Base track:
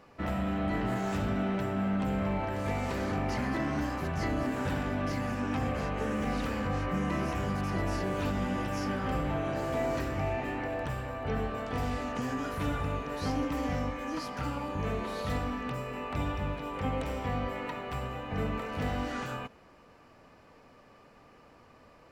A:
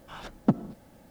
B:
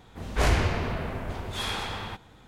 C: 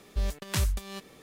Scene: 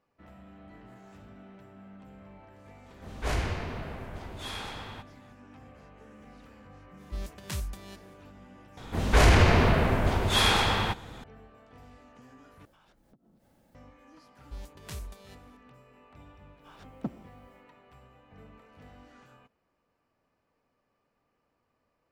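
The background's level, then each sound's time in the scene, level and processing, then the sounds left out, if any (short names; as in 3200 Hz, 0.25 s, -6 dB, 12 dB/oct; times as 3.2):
base track -20 dB
2.86 add B -7 dB
6.96 add C -7.5 dB, fades 0.05 s
8.77 add B -8.5 dB + maximiser +17 dB
12.65 replace with A -9.5 dB + compressor 10:1, threshold -50 dBFS
14.35 add C -13 dB
16.56 add A -12 dB, fades 0.10 s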